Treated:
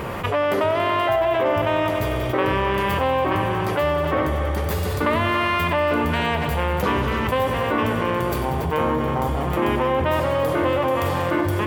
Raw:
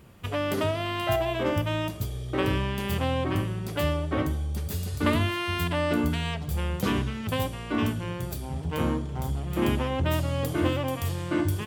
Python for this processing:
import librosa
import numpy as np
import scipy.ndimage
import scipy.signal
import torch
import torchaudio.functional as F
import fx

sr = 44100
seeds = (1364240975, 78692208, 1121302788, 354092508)

p1 = fx.graphic_eq(x, sr, hz=(500, 1000, 2000, 8000), db=(9, 10, 7, -3))
p2 = p1 + fx.echo_heads(p1, sr, ms=94, heads='all three', feedback_pct=58, wet_db=-15, dry=0)
p3 = fx.env_flatten(p2, sr, amount_pct=70)
y = F.gain(torch.from_numpy(p3), -6.0).numpy()